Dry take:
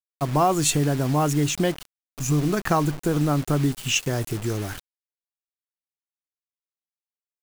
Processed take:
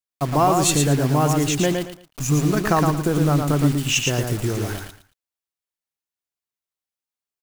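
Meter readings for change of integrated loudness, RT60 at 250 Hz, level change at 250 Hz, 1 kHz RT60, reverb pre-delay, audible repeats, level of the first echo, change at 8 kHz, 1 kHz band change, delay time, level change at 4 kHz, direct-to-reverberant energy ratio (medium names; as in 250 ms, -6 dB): +3.0 dB, no reverb, +3.0 dB, no reverb, no reverb, 3, -4.5 dB, +3.5 dB, +3.5 dB, 113 ms, +3.5 dB, no reverb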